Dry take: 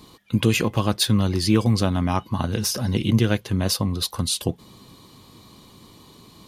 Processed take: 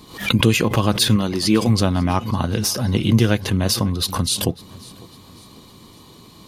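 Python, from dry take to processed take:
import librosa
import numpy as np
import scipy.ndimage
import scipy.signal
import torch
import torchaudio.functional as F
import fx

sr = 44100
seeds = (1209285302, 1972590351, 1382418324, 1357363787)

y = fx.peak_eq(x, sr, hz=94.0, db=-11.5, octaves=0.79, at=(1.16, 1.69))
y = fx.echo_feedback(y, sr, ms=551, feedback_pct=44, wet_db=-22)
y = fx.pre_swell(y, sr, db_per_s=120.0)
y = y * librosa.db_to_amplitude(3.0)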